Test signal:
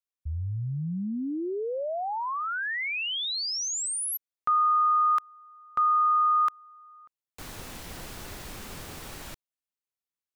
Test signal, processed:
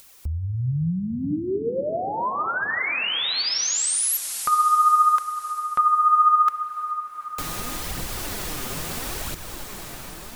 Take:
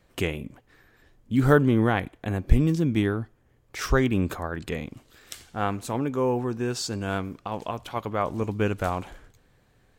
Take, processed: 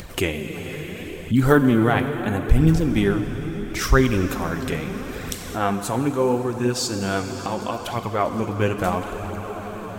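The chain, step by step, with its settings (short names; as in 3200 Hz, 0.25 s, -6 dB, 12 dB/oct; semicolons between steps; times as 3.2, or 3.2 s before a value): high shelf 6900 Hz +5.5 dB; plate-style reverb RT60 4.7 s, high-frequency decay 0.9×, DRR 6.5 dB; flange 0.75 Hz, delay 0.2 ms, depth 7.9 ms, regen +42%; upward compressor, threshold -30 dBFS; maximiser +10.5 dB; gain -3 dB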